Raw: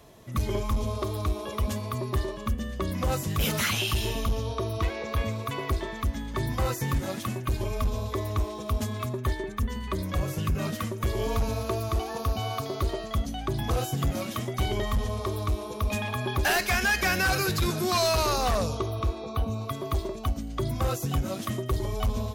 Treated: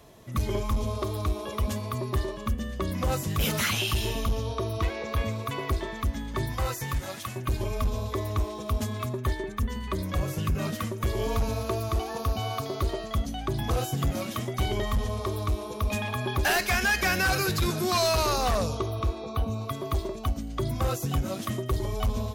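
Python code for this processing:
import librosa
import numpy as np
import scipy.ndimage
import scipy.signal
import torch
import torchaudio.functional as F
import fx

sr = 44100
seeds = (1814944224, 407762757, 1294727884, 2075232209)

y = fx.peak_eq(x, sr, hz=240.0, db=fx.line((6.44, -5.5), (7.35, -12.5)), octaves=2.0, at=(6.44, 7.35), fade=0.02)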